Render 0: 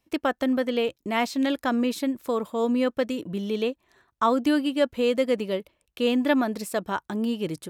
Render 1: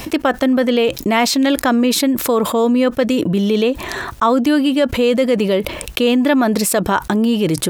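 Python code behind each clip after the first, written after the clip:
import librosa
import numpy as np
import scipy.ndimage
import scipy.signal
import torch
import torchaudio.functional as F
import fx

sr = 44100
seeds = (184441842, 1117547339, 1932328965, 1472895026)

y = fx.env_flatten(x, sr, amount_pct=70)
y = y * 10.0 ** (5.5 / 20.0)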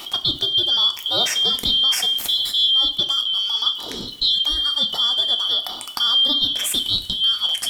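y = fx.band_shuffle(x, sr, order='2413')
y = fx.rev_double_slope(y, sr, seeds[0], early_s=0.32, late_s=2.1, knee_db=-18, drr_db=5.5)
y = y * 10.0 ** (-6.0 / 20.0)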